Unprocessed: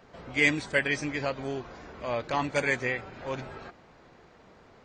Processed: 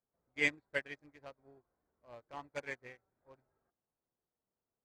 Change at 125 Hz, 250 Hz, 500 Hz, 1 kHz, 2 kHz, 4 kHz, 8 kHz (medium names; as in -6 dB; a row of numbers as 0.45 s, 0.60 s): -20.0 dB, -17.0 dB, -15.0 dB, -18.0 dB, -11.0 dB, -12.0 dB, -14.5 dB